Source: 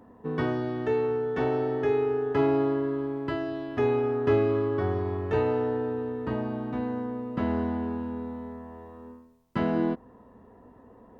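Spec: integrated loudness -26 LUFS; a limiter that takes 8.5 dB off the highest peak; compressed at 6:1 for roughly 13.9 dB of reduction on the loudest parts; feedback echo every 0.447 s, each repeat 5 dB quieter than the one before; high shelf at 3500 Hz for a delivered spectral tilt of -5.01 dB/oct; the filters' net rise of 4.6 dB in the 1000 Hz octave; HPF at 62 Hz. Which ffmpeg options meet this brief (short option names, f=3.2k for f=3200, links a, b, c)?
-af "highpass=62,equalizer=f=1k:t=o:g=6.5,highshelf=f=3.5k:g=-8,acompressor=threshold=-34dB:ratio=6,alimiter=level_in=7dB:limit=-24dB:level=0:latency=1,volume=-7dB,aecho=1:1:447|894|1341|1788|2235|2682|3129:0.562|0.315|0.176|0.0988|0.0553|0.031|0.0173,volume=13dB"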